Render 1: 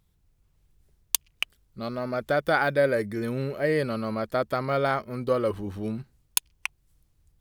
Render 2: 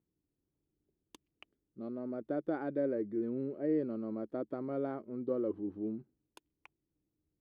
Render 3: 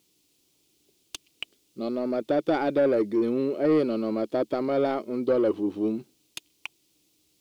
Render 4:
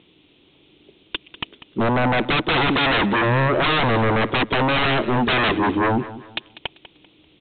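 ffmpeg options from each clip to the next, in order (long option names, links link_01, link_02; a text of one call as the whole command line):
ffmpeg -i in.wav -af "bandpass=frequency=310:width_type=q:width=3.3:csg=0" out.wav
ffmpeg -i in.wav -filter_complex "[0:a]aexciter=amount=10.3:drive=4.1:freq=2500,asplit=2[link_01][link_02];[link_02]highpass=frequency=720:poles=1,volume=19dB,asoftclip=type=tanh:threshold=-17.5dB[link_03];[link_01][link_03]amix=inputs=2:normalize=0,lowpass=frequency=1600:poles=1,volume=-6dB,volume=6dB" out.wav
ffmpeg -i in.wav -af "aresample=8000,aeval=exprs='0.211*sin(PI/2*6.31*val(0)/0.211)':channel_layout=same,aresample=44100,aecho=1:1:195|390|585:0.168|0.0537|0.0172,volume=-2dB" out.wav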